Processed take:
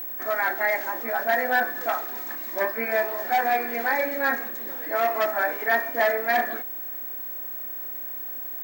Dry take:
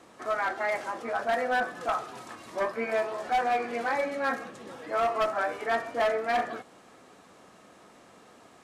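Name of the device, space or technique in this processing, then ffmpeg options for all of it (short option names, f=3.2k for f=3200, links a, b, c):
old television with a line whistle: -af "highpass=f=220:w=0.5412,highpass=f=220:w=1.3066,equalizer=f=470:t=q:w=4:g=-4,equalizer=f=1.2k:t=q:w=4:g=-7,equalizer=f=1.8k:t=q:w=4:g=8,equalizer=f=2.9k:t=q:w=4:g=-6,lowpass=f=8.7k:w=0.5412,lowpass=f=8.7k:w=1.3066,aeval=exprs='val(0)+0.0178*sin(2*PI*15734*n/s)':c=same,volume=4dB"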